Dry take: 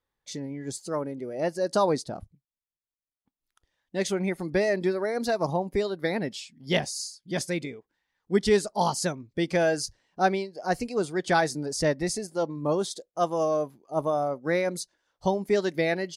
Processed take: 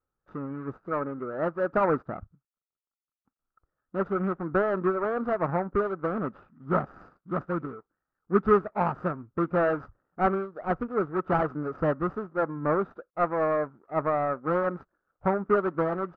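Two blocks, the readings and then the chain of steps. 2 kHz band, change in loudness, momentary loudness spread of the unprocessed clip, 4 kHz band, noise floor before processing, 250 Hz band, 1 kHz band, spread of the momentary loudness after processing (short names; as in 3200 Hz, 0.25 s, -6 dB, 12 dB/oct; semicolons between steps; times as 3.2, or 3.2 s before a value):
-3.5 dB, -0.5 dB, 10 LU, under -20 dB, under -85 dBFS, -0.5 dB, +1.5 dB, 11 LU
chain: median filter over 41 samples; synth low-pass 1300 Hz, resonance Q 8.6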